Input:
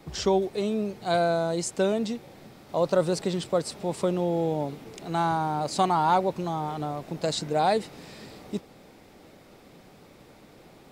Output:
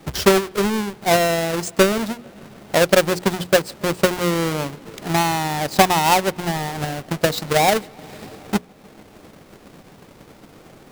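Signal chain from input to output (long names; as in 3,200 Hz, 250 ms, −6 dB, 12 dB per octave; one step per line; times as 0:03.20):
each half-wave held at its own peak
mains-hum notches 60/120/180/240/300/360/420/480 Hz
bucket-brigade delay 147 ms, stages 4,096, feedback 76%, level −23.5 dB
transient designer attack +7 dB, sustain −5 dB
level +1.5 dB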